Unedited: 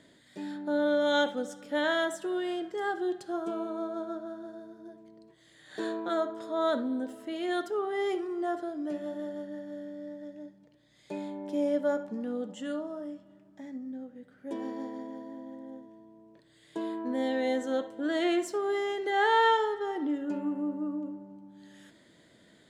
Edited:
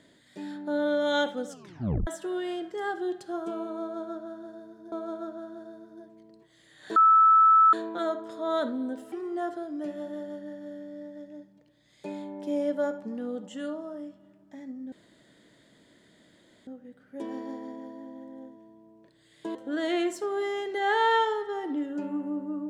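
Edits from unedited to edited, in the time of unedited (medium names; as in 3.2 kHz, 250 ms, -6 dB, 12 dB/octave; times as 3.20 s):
1.49 s: tape stop 0.58 s
3.80–4.92 s: loop, 2 plays
5.84 s: add tone 1.31 kHz -14.5 dBFS 0.77 s
7.23–8.18 s: delete
13.98 s: insert room tone 1.75 s
16.86–17.87 s: delete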